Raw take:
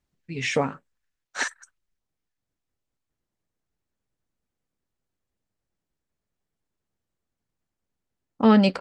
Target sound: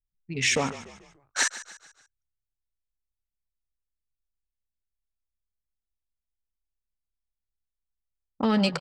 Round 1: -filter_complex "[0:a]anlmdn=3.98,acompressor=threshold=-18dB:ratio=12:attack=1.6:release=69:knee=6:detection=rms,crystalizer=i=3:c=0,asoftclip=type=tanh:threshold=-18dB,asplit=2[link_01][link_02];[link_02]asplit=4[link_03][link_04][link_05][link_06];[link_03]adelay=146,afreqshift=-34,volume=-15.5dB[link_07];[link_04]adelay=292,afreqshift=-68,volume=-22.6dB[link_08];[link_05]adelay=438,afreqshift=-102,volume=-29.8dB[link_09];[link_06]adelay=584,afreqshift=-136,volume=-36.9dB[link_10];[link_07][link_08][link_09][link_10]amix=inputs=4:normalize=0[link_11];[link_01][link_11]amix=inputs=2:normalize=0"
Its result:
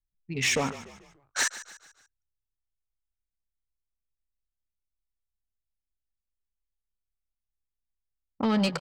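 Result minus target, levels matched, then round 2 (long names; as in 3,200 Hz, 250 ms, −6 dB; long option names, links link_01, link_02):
soft clipping: distortion +18 dB
-filter_complex "[0:a]anlmdn=3.98,acompressor=threshold=-18dB:ratio=12:attack=1.6:release=69:knee=6:detection=rms,crystalizer=i=3:c=0,asoftclip=type=tanh:threshold=-7dB,asplit=2[link_01][link_02];[link_02]asplit=4[link_03][link_04][link_05][link_06];[link_03]adelay=146,afreqshift=-34,volume=-15.5dB[link_07];[link_04]adelay=292,afreqshift=-68,volume=-22.6dB[link_08];[link_05]adelay=438,afreqshift=-102,volume=-29.8dB[link_09];[link_06]adelay=584,afreqshift=-136,volume=-36.9dB[link_10];[link_07][link_08][link_09][link_10]amix=inputs=4:normalize=0[link_11];[link_01][link_11]amix=inputs=2:normalize=0"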